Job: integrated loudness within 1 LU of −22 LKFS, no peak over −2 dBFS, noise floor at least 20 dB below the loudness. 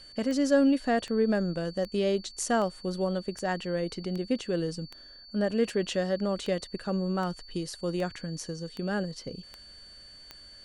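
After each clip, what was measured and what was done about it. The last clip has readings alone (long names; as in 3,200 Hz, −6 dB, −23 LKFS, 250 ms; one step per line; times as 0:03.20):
number of clicks 14; interfering tone 4,500 Hz; level of the tone −48 dBFS; integrated loudness −30.0 LKFS; sample peak −11.5 dBFS; target loudness −22.0 LKFS
→ click removal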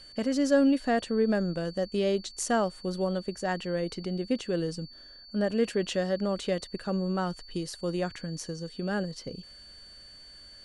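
number of clicks 0; interfering tone 4,500 Hz; level of the tone −48 dBFS
→ notch filter 4,500 Hz, Q 30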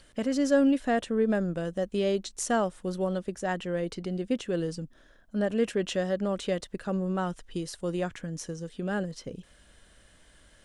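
interfering tone none found; integrated loudness −30.0 LKFS; sample peak −12.0 dBFS; target loudness −22.0 LKFS
→ level +8 dB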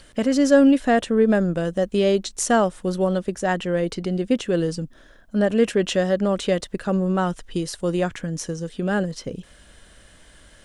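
integrated loudness −22.0 LKFS; sample peak −4.0 dBFS; background noise floor −51 dBFS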